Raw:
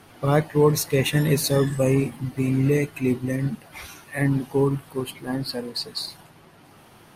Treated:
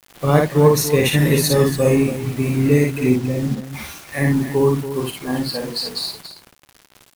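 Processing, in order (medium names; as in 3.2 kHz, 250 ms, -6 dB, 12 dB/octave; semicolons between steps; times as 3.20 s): 3.10–3.64 s: low-pass 1 kHz 12 dB/octave; bit crusher 7-bit; on a send: loudspeakers at several distances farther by 19 m -3 dB, 97 m -11 dB; on the sum: trim +3.5 dB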